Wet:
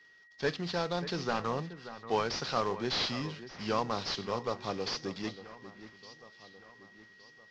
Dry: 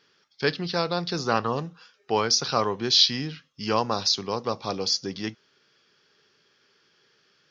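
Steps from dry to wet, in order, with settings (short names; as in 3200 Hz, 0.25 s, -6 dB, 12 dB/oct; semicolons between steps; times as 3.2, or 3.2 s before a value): CVSD 32 kbps; whine 1900 Hz -52 dBFS; echo with dull and thin repeats by turns 0.583 s, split 2400 Hz, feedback 63%, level -13 dB; gain -5.5 dB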